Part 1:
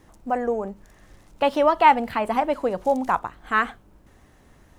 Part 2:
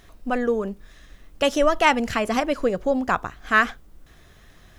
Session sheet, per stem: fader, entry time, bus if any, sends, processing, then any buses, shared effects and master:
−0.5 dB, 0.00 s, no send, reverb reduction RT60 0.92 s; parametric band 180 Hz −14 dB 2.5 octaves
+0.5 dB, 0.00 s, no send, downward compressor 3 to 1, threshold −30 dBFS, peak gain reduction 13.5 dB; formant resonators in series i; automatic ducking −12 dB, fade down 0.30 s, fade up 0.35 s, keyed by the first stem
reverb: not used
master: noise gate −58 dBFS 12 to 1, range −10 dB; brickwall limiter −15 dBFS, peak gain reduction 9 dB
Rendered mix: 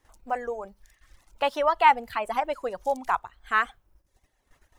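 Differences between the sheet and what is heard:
stem 2 +0.5 dB → −10.5 dB
master: missing brickwall limiter −15 dBFS, peak gain reduction 9 dB

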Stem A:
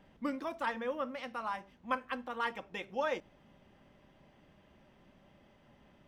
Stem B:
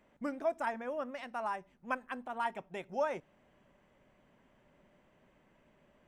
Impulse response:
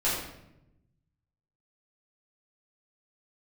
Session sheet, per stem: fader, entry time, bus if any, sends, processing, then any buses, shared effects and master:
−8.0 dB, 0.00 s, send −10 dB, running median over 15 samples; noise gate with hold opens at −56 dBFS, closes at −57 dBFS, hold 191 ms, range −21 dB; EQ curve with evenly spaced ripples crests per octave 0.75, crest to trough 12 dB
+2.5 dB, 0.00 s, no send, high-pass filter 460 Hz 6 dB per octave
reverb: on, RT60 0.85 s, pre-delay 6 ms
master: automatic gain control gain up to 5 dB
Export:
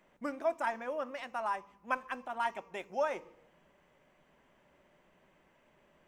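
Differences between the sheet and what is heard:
stem A −8.0 dB → −18.0 dB
master: missing automatic gain control gain up to 5 dB

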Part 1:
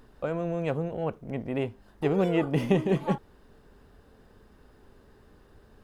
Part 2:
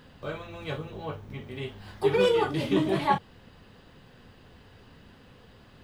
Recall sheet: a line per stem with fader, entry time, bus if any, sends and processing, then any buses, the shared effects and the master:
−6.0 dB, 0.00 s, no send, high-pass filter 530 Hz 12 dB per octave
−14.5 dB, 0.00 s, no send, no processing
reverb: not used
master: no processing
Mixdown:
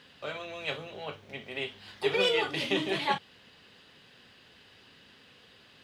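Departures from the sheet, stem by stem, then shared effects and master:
stem 2 −14.5 dB → −6.5 dB
master: extra meter weighting curve D

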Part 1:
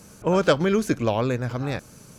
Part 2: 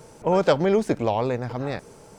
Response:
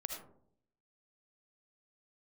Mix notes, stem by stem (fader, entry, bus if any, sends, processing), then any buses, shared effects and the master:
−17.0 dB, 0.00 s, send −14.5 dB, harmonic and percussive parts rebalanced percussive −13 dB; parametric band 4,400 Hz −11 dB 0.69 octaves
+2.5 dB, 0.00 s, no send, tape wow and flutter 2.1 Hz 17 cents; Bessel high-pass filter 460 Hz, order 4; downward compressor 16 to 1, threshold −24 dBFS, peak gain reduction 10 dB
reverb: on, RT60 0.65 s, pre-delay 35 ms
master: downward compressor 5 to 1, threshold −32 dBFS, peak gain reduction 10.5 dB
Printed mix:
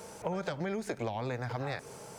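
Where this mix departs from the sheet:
stem 1 −17.0 dB → −5.5 dB
stem 2: missing tape wow and flutter 2.1 Hz 17 cents

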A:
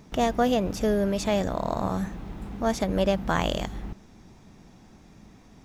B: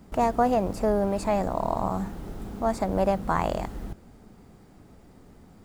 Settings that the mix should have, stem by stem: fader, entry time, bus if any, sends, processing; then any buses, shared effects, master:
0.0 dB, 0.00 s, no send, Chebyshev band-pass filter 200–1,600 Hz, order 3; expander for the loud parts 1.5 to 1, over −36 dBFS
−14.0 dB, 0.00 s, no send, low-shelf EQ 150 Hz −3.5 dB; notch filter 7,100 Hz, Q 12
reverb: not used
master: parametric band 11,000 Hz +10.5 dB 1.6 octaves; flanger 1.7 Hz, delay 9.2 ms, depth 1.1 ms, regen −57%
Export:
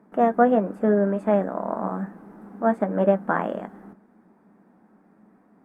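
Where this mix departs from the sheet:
stem A 0.0 dB → +10.0 dB
stem B −14.0 dB → −23.0 dB

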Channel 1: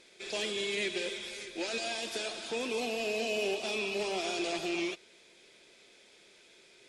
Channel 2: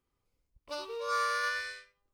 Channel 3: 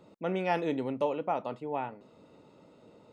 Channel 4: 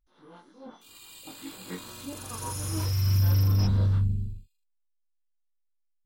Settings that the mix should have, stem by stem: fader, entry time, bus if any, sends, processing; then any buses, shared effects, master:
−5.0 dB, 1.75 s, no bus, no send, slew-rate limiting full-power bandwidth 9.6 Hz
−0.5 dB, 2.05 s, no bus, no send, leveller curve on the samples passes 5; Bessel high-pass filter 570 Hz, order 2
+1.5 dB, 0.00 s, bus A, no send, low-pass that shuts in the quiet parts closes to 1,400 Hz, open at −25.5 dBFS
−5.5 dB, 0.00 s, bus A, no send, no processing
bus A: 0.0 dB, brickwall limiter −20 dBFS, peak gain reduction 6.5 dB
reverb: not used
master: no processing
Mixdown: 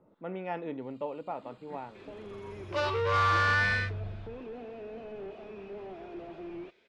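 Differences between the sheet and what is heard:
stem 3 +1.5 dB → −6.5 dB
stem 4 −5.5 dB → −13.0 dB
master: extra low-pass filter 2,600 Hz 12 dB per octave

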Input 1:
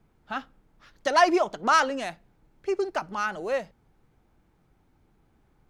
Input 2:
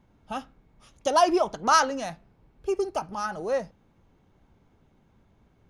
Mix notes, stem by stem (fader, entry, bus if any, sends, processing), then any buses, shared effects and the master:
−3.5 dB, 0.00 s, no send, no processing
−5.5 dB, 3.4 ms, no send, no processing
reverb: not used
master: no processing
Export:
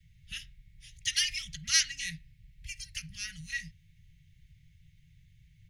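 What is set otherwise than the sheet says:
stem 2 −5.5 dB → +5.0 dB
master: extra Chebyshev band-stop filter 160–1,900 Hz, order 5

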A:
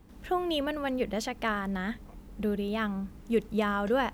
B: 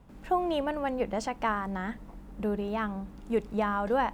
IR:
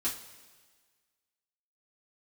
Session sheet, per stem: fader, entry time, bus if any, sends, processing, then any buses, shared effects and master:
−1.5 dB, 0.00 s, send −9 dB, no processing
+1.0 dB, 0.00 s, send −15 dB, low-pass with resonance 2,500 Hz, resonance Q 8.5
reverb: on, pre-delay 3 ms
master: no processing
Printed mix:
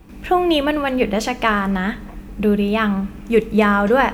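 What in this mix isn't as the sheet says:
stem A −1.5 dB → +7.5 dB
stem B: send off

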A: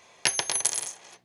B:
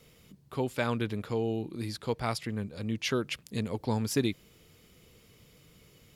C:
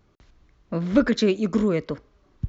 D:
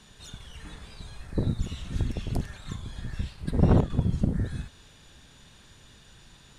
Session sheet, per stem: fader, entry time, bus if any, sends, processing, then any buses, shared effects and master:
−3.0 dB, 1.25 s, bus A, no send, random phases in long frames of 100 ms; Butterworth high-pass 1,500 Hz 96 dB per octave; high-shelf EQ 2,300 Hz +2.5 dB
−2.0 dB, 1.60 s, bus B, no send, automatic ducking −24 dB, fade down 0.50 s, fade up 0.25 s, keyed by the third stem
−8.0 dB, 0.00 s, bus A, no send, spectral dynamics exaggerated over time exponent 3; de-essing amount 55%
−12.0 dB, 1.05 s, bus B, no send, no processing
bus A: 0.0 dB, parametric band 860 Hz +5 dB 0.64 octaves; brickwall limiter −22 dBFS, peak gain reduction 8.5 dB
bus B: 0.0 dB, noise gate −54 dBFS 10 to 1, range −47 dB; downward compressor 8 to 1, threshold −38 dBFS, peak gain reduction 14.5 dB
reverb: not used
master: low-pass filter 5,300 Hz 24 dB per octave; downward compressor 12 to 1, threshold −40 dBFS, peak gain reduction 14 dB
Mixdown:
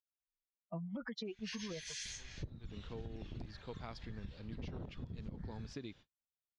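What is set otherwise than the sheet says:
stem B −2.0 dB → −14.0 dB
stem C −8.0 dB → −1.0 dB

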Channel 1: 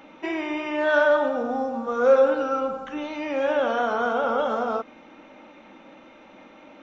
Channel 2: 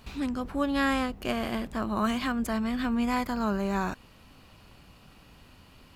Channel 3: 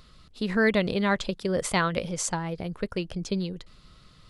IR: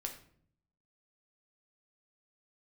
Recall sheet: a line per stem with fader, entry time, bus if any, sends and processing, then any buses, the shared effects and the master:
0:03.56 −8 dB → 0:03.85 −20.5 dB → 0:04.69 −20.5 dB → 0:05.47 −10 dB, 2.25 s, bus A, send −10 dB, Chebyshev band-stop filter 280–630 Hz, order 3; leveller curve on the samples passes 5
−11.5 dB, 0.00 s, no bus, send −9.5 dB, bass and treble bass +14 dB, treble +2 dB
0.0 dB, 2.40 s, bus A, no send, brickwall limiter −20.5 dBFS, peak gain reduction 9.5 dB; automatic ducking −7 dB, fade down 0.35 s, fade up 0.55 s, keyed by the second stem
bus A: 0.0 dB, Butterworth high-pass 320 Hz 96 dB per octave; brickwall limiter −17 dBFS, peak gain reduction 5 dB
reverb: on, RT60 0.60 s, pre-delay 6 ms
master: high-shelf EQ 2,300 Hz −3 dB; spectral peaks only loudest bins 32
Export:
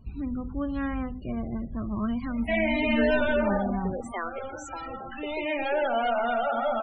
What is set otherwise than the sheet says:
stem 3: missing brickwall limiter −20.5 dBFS, peak gain reduction 9.5 dB
reverb return +7.0 dB

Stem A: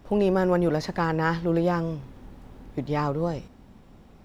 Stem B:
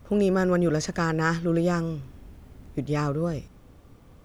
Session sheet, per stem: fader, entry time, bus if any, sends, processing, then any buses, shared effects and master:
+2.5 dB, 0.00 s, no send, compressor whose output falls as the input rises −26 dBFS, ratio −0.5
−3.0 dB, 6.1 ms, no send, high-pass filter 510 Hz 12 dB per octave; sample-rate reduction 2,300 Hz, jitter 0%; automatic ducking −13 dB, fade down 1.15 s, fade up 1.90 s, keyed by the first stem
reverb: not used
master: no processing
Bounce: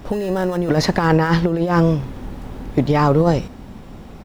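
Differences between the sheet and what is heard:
stem A +2.5 dB → +11.0 dB
stem B: polarity flipped

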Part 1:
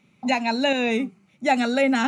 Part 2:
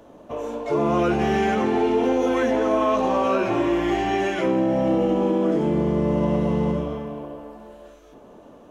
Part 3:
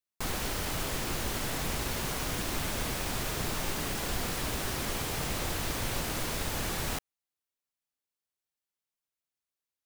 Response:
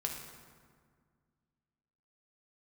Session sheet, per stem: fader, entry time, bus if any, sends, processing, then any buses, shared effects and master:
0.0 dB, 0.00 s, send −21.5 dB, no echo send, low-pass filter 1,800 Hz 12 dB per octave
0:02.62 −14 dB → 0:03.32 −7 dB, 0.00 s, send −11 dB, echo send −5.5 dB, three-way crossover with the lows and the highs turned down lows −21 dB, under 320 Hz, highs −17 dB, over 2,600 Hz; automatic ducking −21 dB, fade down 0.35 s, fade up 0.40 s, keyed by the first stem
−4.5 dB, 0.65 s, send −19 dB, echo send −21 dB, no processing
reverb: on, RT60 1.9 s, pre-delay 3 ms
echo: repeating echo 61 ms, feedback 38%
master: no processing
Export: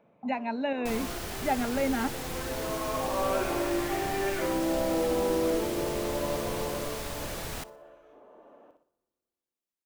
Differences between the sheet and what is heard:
stem 1 0.0 dB → −8.0 dB
reverb return −6.5 dB

